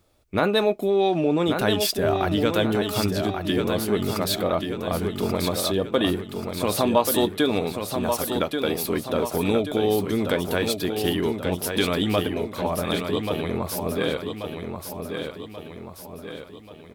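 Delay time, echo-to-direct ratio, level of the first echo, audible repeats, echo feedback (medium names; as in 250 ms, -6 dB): 1134 ms, -5.0 dB, -6.0 dB, 5, 50%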